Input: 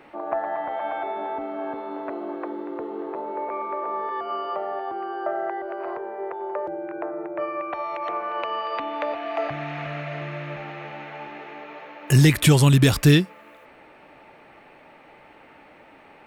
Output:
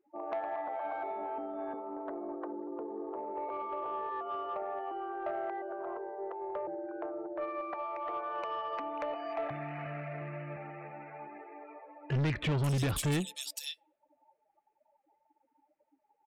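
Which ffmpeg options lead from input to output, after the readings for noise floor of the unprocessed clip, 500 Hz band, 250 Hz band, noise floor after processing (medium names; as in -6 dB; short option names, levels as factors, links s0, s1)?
-50 dBFS, -9.5 dB, -14.0 dB, -77 dBFS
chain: -filter_complex "[0:a]afftdn=nr=33:nf=-37,acrossover=split=3400[s0][s1];[s1]adelay=540[s2];[s0][s2]amix=inputs=2:normalize=0,asoftclip=type=tanh:threshold=0.106,volume=0.422"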